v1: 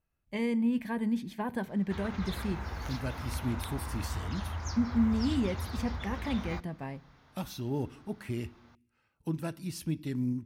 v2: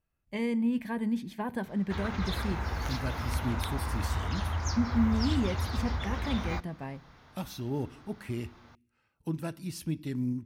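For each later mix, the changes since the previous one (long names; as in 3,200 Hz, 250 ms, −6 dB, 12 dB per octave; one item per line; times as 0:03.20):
background +5.0 dB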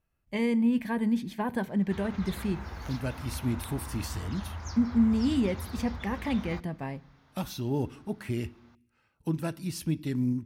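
speech +3.5 dB
background −7.0 dB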